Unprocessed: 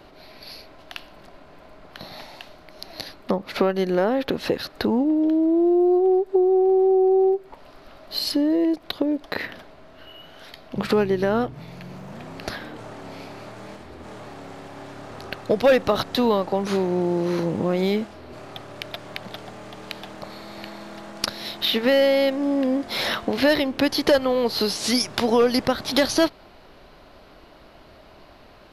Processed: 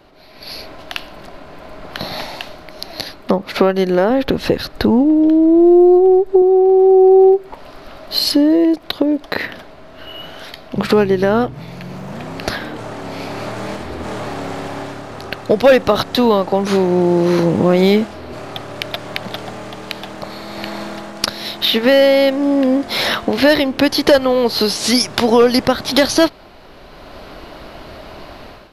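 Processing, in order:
0:04.10–0:06.42: low-shelf EQ 130 Hz +11.5 dB
automatic gain control gain up to 15 dB
level −1 dB

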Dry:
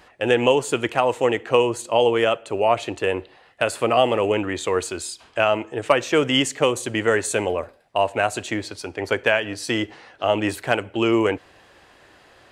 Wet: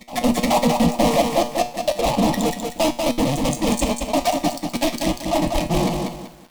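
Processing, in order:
sub-harmonics by changed cycles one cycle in 2, muted
RIAA equalisation playback
noise reduction from a noise print of the clip's start 25 dB
dynamic equaliser 140 Hz, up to +5 dB, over −34 dBFS, Q 1.1
downward compressor, threshold −20 dBFS, peak gain reduction 10.5 dB
rotating-speaker cabinet horn 0.85 Hz, later 8 Hz, at 0:07.02
time stretch by overlap-add 0.52×, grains 33 ms
fuzz pedal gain 43 dB, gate −44 dBFS
phaser with its sweep stopped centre 400 Hz, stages 6
tuned comb filter 120 Hz, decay 0.39 s, harmonics all, mix 70%
backwards echo 424 ms −20.5 dB
feedback echo at a low word length 191 ms, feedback 35%, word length 9 bits, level −4.5 dB
level +8 dB

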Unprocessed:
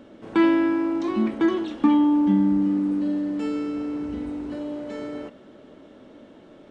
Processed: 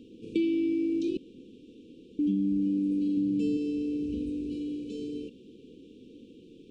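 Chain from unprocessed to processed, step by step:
0:03.17–0:03.57: parametric band 130 Hz +13.5 dB 1.5 octaves
downward compressor 6 to 1, threshold −22 dBFS, peak gain reduction 8.5 dB
0:01.17–0:02.19: fill with room tone
linear-phase brick-wall band-stop 520–2,300 Hz
level −2 dB

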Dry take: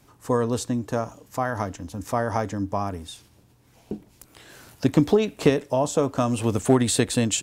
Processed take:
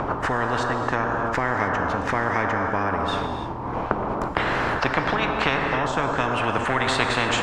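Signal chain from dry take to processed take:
noise gate −50 dBFS, range −24 dB
upward compression, threshold −24 dBFS
background noise white −61 dBFS
low-pass with resonance 960 Hz, resonance Q 5
reverb whose tail is shaped and stops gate 340 ms flat, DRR 6 dB
every bin compressed towards the loudest bin 10 to 1

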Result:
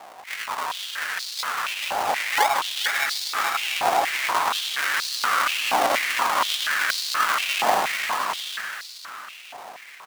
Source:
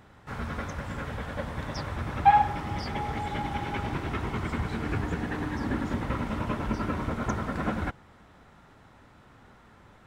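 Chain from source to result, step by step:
spectral tilt −2.5 dB per octave
hard clipping −20 dBFS, distortion −11 dB
chorus effect 0.72 Hz, delay 15.5 ms, depth 4.6 ms
in parallel at −2 dB: downward compressor, threshold −40 dBFS, peak gain reduction 16 dB
on the sum: comb and all-pass reverb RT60 4.8 s, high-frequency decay 0.55×, pre-delay 35 ms, DRR 7.5 dB
sample-and-hold swept by an LFO 41×, swing 60% 1.9 Hz
on a send: bouncing-ball delay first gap 440 ms, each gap 0.6×, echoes 5
on the sum: high-pass on a step sequencer 4.2 Hz 780–4,300 Hz
level +7.5 dB

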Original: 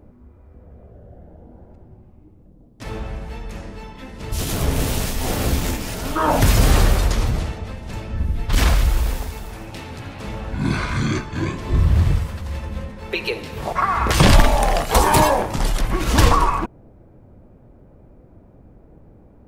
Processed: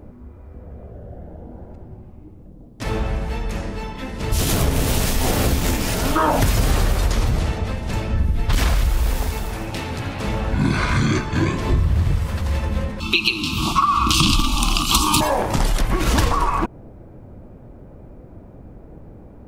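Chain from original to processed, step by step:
0:13.00–0:15.21: drawn EQ curve 130 Hz 0 dB, 320 Hz +8 dB, 480 Hz −27 dB, 760 Hz −14 dB, 1,200 Hz +9 dB, 1,800 Hz −26 dB, 2,600 Hz +10 dB, 3,800 Hz +11 dB, 12,000 Hz +4 dB
downward compressor 6 to 1, threshold −21 dBFS, peak gain reduction 14.5 dB
level +6.5 dB

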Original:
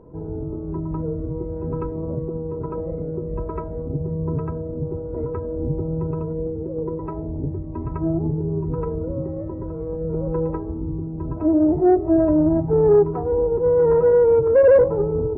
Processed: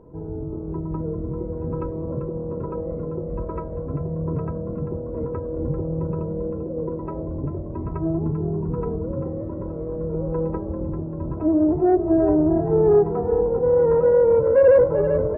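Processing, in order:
echo with shifted repeats 392 ms, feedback 52%, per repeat +39 Hz, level −10 dB
level −1.5 dB

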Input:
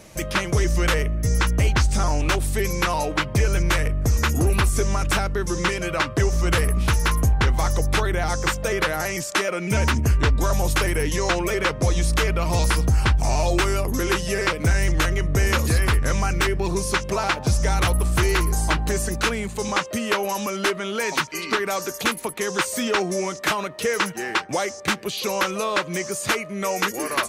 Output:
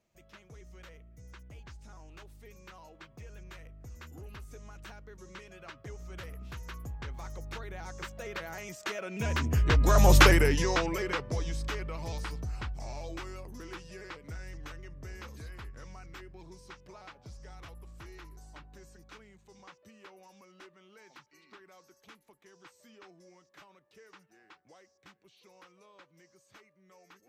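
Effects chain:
source passing by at 0:10.18, 18 m/s, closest 3.2 metres
parametric band 10,000 Hz −11 dB 0.56 octaves
level +4 dB

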